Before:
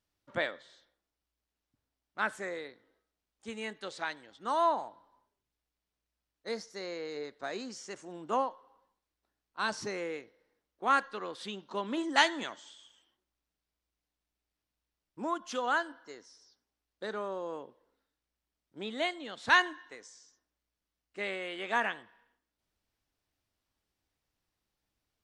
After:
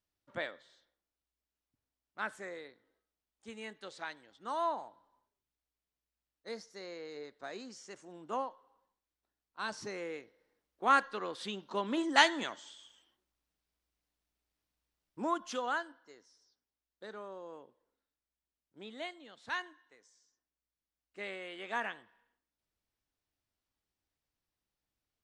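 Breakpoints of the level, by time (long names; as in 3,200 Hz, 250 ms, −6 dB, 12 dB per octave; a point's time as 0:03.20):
0:09.64 −6 dB
0:10.87 +0.5 dB
0:15.40 +0.5 dB
0:15.99 −9 dB
0:18.92 −9 dB
0:19.82 −15.5 dB
0:21.21 −6 dB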